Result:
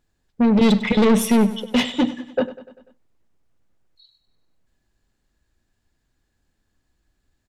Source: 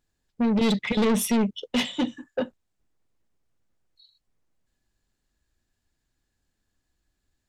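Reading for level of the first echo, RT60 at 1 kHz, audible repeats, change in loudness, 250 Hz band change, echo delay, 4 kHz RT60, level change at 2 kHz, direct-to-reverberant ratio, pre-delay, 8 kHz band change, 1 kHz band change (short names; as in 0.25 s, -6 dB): -16.0 dB, none, 4, +6.5 dB, +7.0 dB, 98 ms, none, +5.0 dB, none, none, +2.0 dB, +6.0 dB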